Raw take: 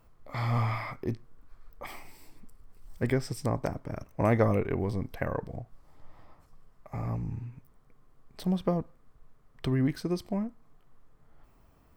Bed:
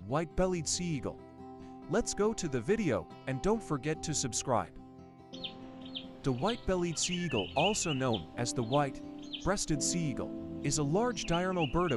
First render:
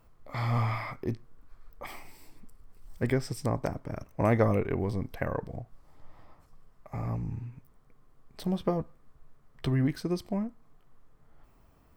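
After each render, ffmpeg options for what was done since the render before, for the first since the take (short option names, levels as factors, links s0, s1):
-filter_complex "[0:a]asettb=1/sr,asplit=3[s0][s1][s2];[s0]atrim=end=8.444[s3];[s1]atrim=start=8.44:end=9.85,asetpts=PTS-STARTPTS,afade=t=in:d=0.004:c=qsin,afade=t=out:st=1.406:d=0.004:c=qsin,asplit=2[s4][s5];[s5]adelay=14,volume=0.355[s6];[s4][s6]amix=inputs=2:normalize=0,atrim=end_sample=62181[s7];[s2]atrim=start=9.846[s8];[s3][s7]acrossfade=d=0.004:c1=hsin:c2=qsin[s9];[s9][s8]acrossfade=d=0.004:c1=qsin:c2=hsin"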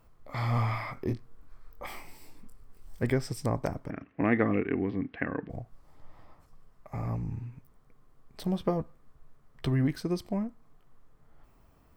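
-filter_complex "[0:a]asettb=1/sr,asplit=3[s0][s1][s2];[s0]atrim=end=0.944[s3];[s1]atrim=start=0.94:end=3.03,asetpts=PTS-STARTPTS,afade=t=in:d=0.004:c=qsin,afade=t=out:st=2.086:d=0.004:c=qsin,asplit=2[s4][s5];[s5]adelay=24,volume=0.596[s6];[s4][s6]amix=inputs=2:normalize=0,atrim=end_sample=92169[s7];[s2]atrim=start=3.026[s8];[s3][s7]acrossfade=d=0.004:c1=hsin:c2=qsin[s9];[s9][s8]acrossfade=d=0.004:c1=qsin:c2=hsin,asettb=1/sr,asplit=3[s10][s11][s12];[s10]atrim=end=3.904[s13];[s11]atrim=start=3.9:end=5.5,asetpts=PTS-STARTPTS,afade=t=in:d=0.004:c=qsin,afade=t=out:st=1.596:d=0.004:c=qsin,highpass=120,equalizer=f=120:t=q:w=4:g=-7,equalizer=f=280:t=q:w=4:g=9,equalizer=f=580:t=q:w=4:g=-9,equalizer=f=940:t=q:w=4:g=-7,equalizer=f=1800:t=q:w=4:g=7,equalizer=f=2700:t=q:w=4:g=5,lowpass=f=3200:w=0.5412,lowpass=f=3200:w=1.3066[s14];[s12]atrim=start=5.496[s15];[s13][s14]acrossfade=d=0.004:c1=hsin:c2=qsin[s16];[s16][s15]acrossfade=d=0.004:c1=qsin:c2=hsin"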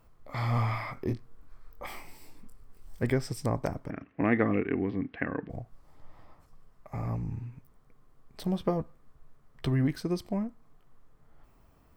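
-af anull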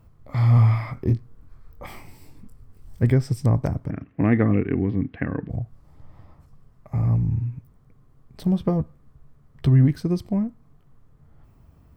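-af "equalizer=f=100:t=o:w=2.6:g=14"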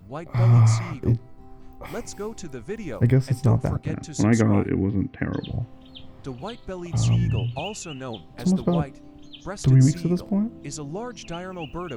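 -filter_complex "[1:a]volume=0.75[s0];[0:a][s0]amix=inputs=2:normalize=0"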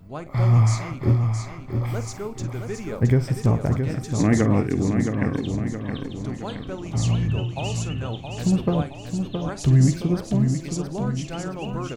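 -filter_complex "[0:a]asplit=2[s0][s1];[s1]adelay=48,volume=0.211[s2];[s0][s2]amix=inputs=2:normalize=0,asplit=2[s3][s4];[s4]aecho=0:1:669|1338|2007|2676|3345|4014:0.473|0.241|0.123|0.0628|0.032|0.0163[s5];[s3][s5]amix=inputs=2:normalize=0"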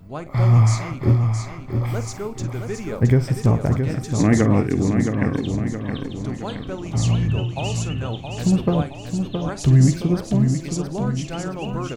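-af "volume=1.33"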